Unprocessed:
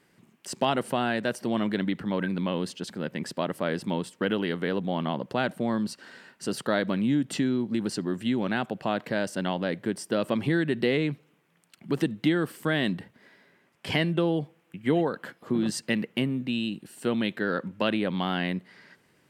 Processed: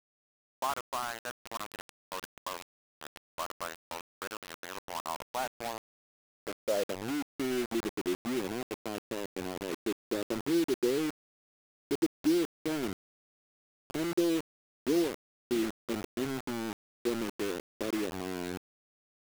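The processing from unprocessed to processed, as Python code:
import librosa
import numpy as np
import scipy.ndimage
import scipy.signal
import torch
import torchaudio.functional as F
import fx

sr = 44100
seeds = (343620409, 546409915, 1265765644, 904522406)

y = fx.filter_sweep_bandpass(x, sr, from_hz=1100.0, to_hz=360.0, start_s=4.84, end_s=7.69, q=3.5)
y = fx.quant_dither(y, sr, seeds[0], bits=6, dither='none')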